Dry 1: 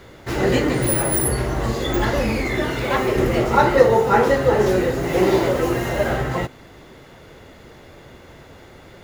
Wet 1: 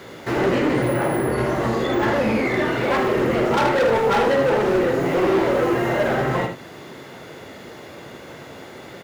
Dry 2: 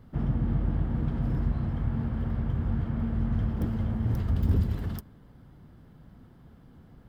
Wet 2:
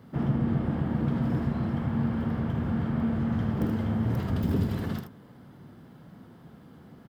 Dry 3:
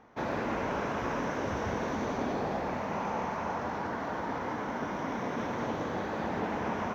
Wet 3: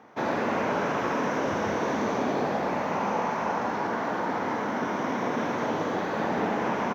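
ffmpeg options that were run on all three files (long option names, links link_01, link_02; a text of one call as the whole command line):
ffmpeg -i in.wav -filter_complex "[0:a]acrossover=split=2700[link_01][link_02];[link_02]acompressor=threshold=-46dB:ratio=4:attack=1:release=60[link_03];[link_01][link_03]amix=inputs=2:normalize=0,highpass=150,asplit=2[link_04][link_05];[link_05]acompressor=threshold=-28dB:ratio=6,volume=-1.5dB[link_06];[link_04][link_06]amix=inputs=2:normalize=0,volume=16.5dB,asoftclip=hard,volume=-16.5dB,aecho=1:1:49|78:0.282|0.398" out.wav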